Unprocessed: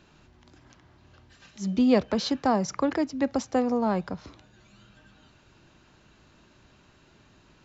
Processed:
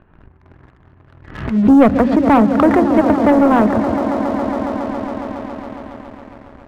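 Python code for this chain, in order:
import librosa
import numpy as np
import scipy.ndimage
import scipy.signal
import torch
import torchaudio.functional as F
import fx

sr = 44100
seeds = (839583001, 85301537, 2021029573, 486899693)

y = fx.speed_glide(x, sr, from_pct=103, to_pct=126)
y = scipy.signal.sosfilt(scipy.signal.butter(4, 1900.0, 'lowpass', fs=sr, output='sos'), y)
y = fx.low_shelf(y, sr, hz=100.0, db=12.0)
y = fx.hum_notches(y, sr, base_hz=50, count=7)
y = fx.echo_swell(y, sr, ms=138, loudest=5, wet_db=-15)
y = fx.leveller(y, sr, passes=2)
y = fx.pre_swell(y, sr, db_per_s=85.0)
y = y * librosa.db_to_amplitude(6.0)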